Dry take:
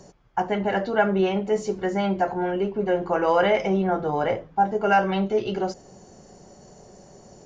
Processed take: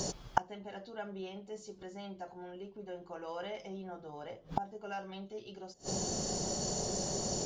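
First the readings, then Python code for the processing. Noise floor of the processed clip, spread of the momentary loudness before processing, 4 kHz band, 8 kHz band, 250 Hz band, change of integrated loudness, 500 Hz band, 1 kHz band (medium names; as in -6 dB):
-56 dBFS, 7 LU, -4.5 dB, no reading, -16.5 dB, -16.0 dB, -18.0 dB, -15.5 dB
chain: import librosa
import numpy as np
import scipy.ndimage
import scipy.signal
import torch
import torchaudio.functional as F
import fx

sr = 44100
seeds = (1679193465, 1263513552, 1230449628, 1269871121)

y = fx.high_shelf_res(x, sr, hz=2800.0, db=7.5, q=1.5)
y = fx.gate_flip(y, sr, shuts_db=-26.0, range_db=-32)
y = y * librosa.db_to_amplitude(10.5)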